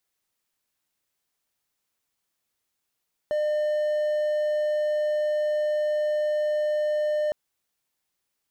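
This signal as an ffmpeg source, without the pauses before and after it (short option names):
-f lavfi -i "aevalsrc='0.1*(1-4*abs(mod(603*t+0.25,1)-0.5))':d=4.01:s=44100"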